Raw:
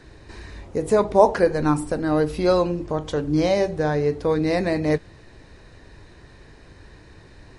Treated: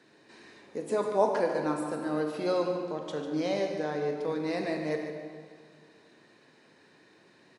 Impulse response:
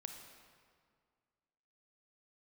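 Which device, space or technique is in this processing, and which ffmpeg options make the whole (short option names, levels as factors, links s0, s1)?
PA in a hall: -filter_complex "[0:a]highpass=f=180:w=0.5412,highpass=f=180:w=1.3066,equalizer=f=3000:t=o:w=1:g=3,aecho=1:1:147:0.316[s0];[1:a]atrim=start_sample=2205[s1];[s0][s1]afir=irnorm=-1:irlink=0,volume=0.501"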